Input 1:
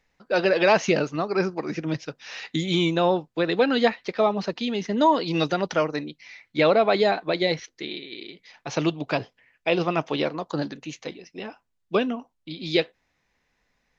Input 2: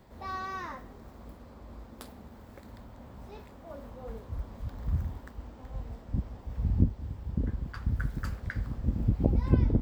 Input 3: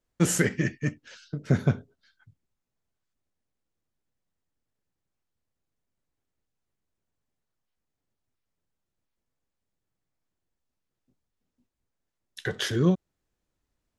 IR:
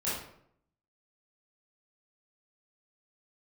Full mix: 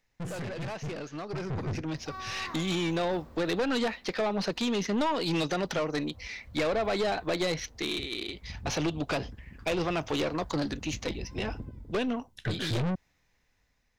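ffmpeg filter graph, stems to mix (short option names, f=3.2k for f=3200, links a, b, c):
-filter_complex "[0:a]acrossover=split=4400[a][b];[b]acompressor=threshold=-43dB:ratio=4:attack=1:release=60[c];[a][c]amix=inputs=2:normalize=0,highshelf=f=5.2k:g=8.5,acompressor=threshold=-23dB:ratio=6,volume=-6.5dB[d];[1:a]adelay=1850,volume=-10.5dB,afade=t=out:st=3.16:d=0.65:silence=0.223872,asplit=2[e][f];[f]volume=-6.5dB[g];[2:a]bass=f=250:g=14,treble=f=4k:g=-8,volume=-9.5dB[h];[g]aecho=0:1:298|596|894|1192:1|0.28|0.0784|0.022[i];[d][e][h][i]amix=inputs=4:normalize=0,aeval=exprs='(tanh(50.1*val(0)+0.3)-tanh(0.3))/50.1':c=same,dynaudnorm=f=600:g=7:m=10dB"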